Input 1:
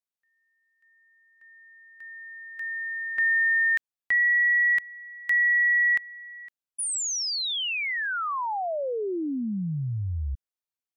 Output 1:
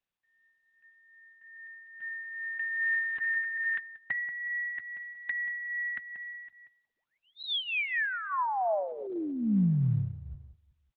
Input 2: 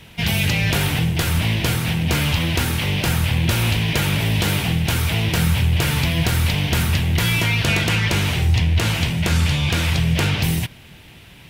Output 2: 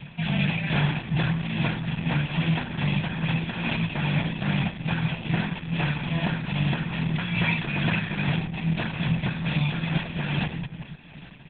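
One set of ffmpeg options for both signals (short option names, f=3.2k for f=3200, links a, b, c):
-filter_complex "[0:a]equalizer=f=4k:t=o:w=0.31:g=-8,bandreject=f=1.2k:w=21,afftfilt=real='re*lt(hypot(re,im),0.891)':imag='im*lt(hypot(re,im),0.891)':win_size=1024:overlap=0.75,aeval=exprs='0.398*(cos(1*acos(clip(val(0)/0.398,-1,1)))-cos(1*PI/2))+0.00398*(cos(3*acos(clip(val(0)/0.398,-1,1)))-cos(3*PI/2))':c=same,asplit=2[a][b];[b]acompressor=threshold=-32dB:ratio=12:attack=0.93:release=79:knee=6:detection=rms,volume=2.5dB[c];[a][c]amix=inputs=2:normalize=0,lowshelf=f=110:t=q:w=3:g=-8.5,aecho=1:1:1.2:0.59,asplit=2[d][e];[e]adelay=184,lowpass=f=1.6k:p=1,volume=-10dB,asplit=2[f][g];[g]adelay=184,lowpass=f=1.6k:p=1,volume=0.28,asplit=2[h][i];[i]adelay=184,lowpass=f=1.6k:p=1,volume=0.28[j];[d][f][h][j]amix=inputs=4:normalize=0,tremolo=f=2.4:d=0.49,acrossover=split=4700[k][l];[l]acompressor=threshold=-35dB:ratio=4:attack=1:release=60[m];[k][m]amix=inputs=2:normalize=0,volume=-5dB" -ar 48000 -c:a libopus -b:a 8k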